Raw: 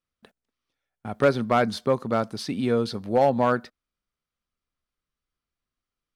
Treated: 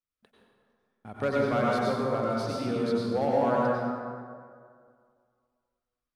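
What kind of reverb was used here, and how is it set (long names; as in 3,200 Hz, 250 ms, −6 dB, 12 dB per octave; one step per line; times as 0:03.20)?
dense smooth reverb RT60 2.1 s, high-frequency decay 0.5×, pre-delay 80 ms, DRR −5 dB
level −10 dB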